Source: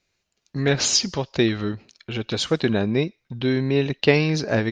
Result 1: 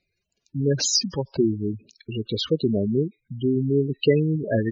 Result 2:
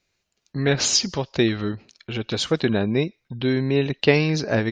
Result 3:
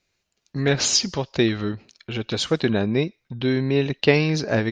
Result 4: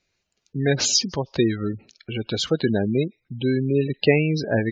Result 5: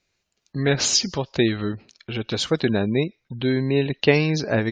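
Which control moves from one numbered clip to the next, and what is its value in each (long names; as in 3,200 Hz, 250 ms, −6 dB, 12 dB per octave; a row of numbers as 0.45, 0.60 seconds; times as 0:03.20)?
gate on every frequency bin, under each frame's peak: −10, −45, −60, −20, −35 decibels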